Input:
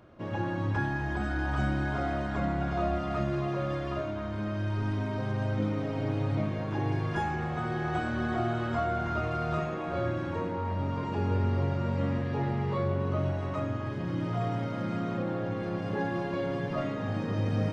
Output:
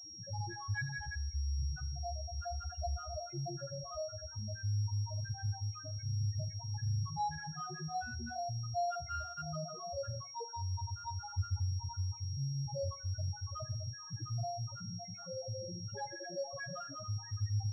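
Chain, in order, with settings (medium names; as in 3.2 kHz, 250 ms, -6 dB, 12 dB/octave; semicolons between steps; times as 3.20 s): random holes in the spectrogram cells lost 35%; dynamic bell 250 Hz, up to -8 dB, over -46 dBFS, Q 0.93; loudest bins only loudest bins 2; 16.38–17.18 s: treble shelf 2.2 kHz +12 dB; reverberation RT60 0.55 s, pre-delay 38 ms, DRR 18.5 dB; class-D stage that switches slowly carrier 5.6 kHz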